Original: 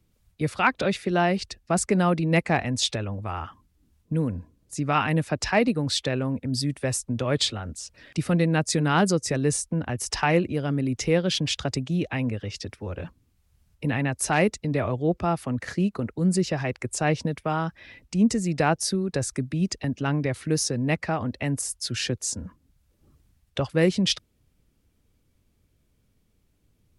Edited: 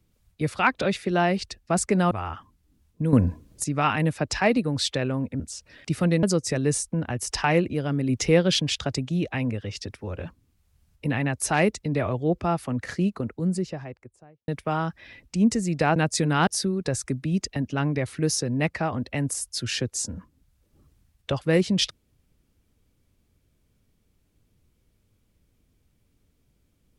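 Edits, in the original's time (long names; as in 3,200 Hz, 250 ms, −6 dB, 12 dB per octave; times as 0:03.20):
0:02.11–0:03.22: remove
0:04.24–0:04.75: clip gain +10.5 dB
0:06.51–0:07.68: remove
0:08.51–0:09.02: move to 0:18.75
0:10.88–0:11.39: clip gain +3 dB
0:15.74–0:17.27: fade out and dull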